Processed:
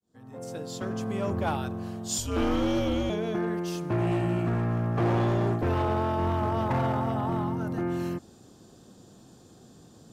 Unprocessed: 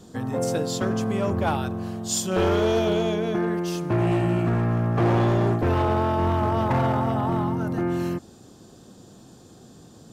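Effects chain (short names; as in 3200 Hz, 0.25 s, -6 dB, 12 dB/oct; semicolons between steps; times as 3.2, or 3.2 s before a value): opening faded in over 1.30 s; 2.18–3.1 frequency shift -110 Hz; gain -4.5 dB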